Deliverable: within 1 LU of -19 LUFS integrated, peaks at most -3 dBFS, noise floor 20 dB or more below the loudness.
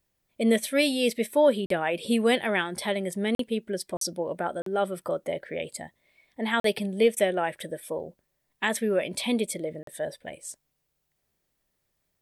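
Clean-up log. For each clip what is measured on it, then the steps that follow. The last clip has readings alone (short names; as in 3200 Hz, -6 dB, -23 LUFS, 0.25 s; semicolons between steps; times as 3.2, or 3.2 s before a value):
dropouts 6; longest dropout 43 ms; loudness -27.5 LUFS; peak -11.0 dBFS; loudness target -19.0 LUFS
-> interpolate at 1.66/3.35/3.97/4.62/6.6/9.83, 43 ms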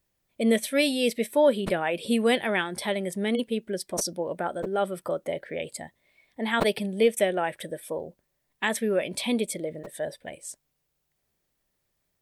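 dropouts 0; loudness -27.0 LUFS; peak -10.0 dBFS; loudness target -19.0 LUFS
-> gain +8 dB; limiter -3 dBFS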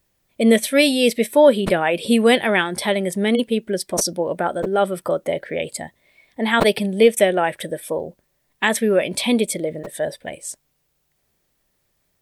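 loudness -19.0 LUFS; peak -3.0 dBFS; noise floor -70 dBFS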